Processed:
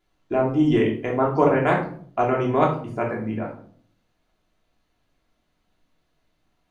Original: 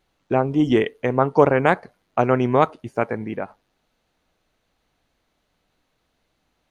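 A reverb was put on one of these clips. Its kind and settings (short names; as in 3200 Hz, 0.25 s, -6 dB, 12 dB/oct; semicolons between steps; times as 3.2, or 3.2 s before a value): shoebox room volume 550 m³, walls furnished, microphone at 3.1 m; gain -7 dB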